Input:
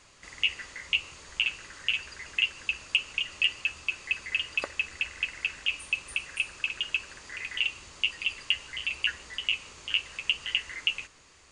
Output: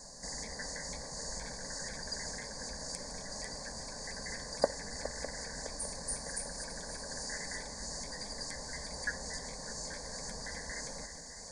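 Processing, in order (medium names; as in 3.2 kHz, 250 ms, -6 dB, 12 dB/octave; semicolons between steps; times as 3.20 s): backward echo that repeats 303 ms, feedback 71%, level -12 dB; dynamic bell 7.2 kHz, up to -6 dB, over -44 dBFS, Q 0.92; Chebyshev band-stop 1.7–4.6 kHz, order 3; static phaser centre 350 Hz, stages 6; trim +11.5 dB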